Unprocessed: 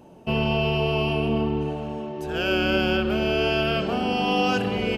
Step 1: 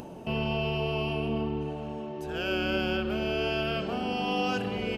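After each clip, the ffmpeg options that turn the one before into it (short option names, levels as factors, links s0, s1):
-af "acompressor=mode=upward:threshold=0.0562:ratio=2.5,volume=0.473"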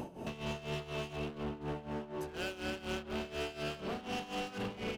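-af "alimiter=level_in=1.06:limit=0.0631:level=0:latency=1:release=129,volume=0.944,asoftclip=type=hard:threshold=0.0158,tremolo=f=4.1:d=0.81,volume=1.26"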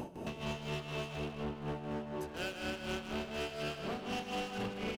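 -af "aecho=1:1:157:0.398"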